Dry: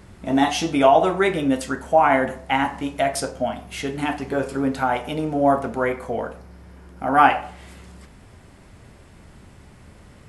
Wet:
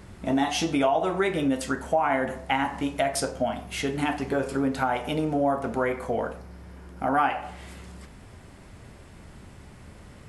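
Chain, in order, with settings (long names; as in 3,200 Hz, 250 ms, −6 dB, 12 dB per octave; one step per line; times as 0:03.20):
downward compressor 3 to 1, threshold −22 dBFS, peak gain reduction 10.5 dB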